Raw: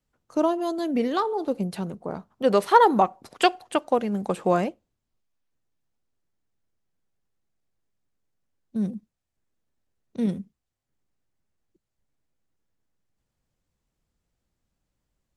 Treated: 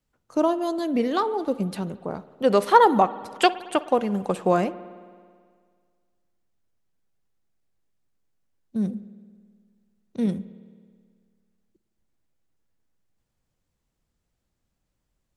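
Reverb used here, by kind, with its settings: spring tank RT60 1.9 s, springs 54 ms, chirp 20 ms, DRR 16 dB; gain +1 dB

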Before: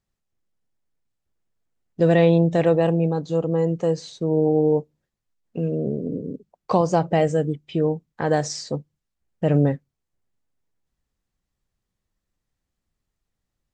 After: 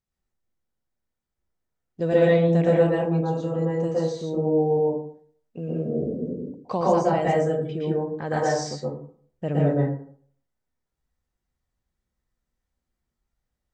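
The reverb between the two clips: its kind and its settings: plate-style reverb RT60 0.55 s, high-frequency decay 0.4×, pre-delay 0.105 s, DRR -6 dB; gain -8 dB

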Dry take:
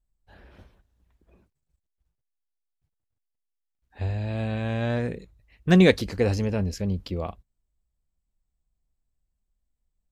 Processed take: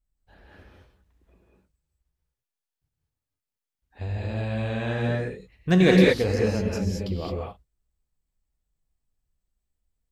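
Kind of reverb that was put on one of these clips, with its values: non-linear reverb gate 0.24 s rising, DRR -3 dB; gain -3 dB

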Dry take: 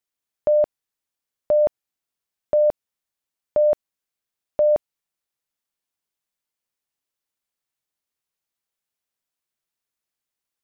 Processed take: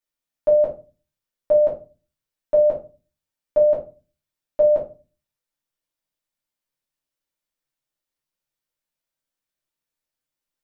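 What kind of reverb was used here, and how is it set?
shoebox room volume 130 m³, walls furnished, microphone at 2.5 m; gain -6.5 dB

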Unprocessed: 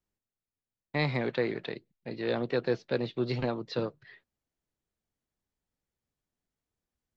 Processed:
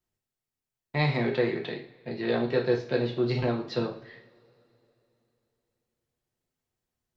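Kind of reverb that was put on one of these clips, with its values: two-slope reverb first 0.44 s, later 3.3 s, from -27 dB, DRR 0 dB

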